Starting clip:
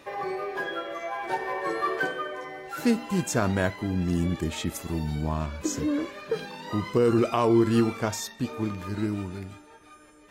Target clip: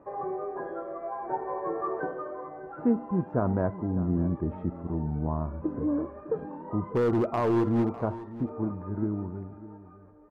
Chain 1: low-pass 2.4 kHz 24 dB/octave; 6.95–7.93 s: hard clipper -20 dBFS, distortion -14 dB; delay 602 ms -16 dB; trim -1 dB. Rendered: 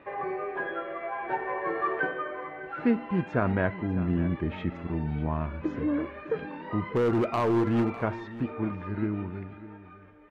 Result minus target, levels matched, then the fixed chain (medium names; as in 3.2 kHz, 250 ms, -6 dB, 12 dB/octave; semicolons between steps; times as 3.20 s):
2 kHz band +11.0 dB
low-pass 1.1 kHz 24 dB/octave; 6.95–7.93 s: hard clipper -20 dBFS, distortion -14 dB; delay 602 ms -16 dB; trim -1 dB